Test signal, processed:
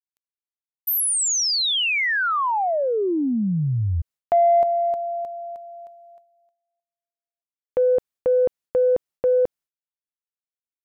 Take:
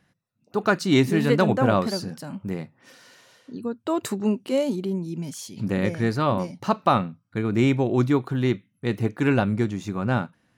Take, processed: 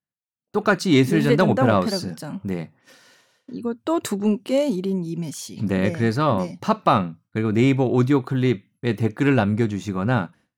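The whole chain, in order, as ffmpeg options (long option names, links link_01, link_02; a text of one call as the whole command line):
ffmpeg -i in.wav -filter_complex "[0:a]asplit=2[link_01][link_02];[link_02]asoftclip=type=tanh:threshold=-15.5dB,volume=-7dB[link_03];[link_01][link_03]amix=inputs=2:normalize=0,agate=range=-33dB:threshold=-43dB:ratio=3:detection=peak" out.wav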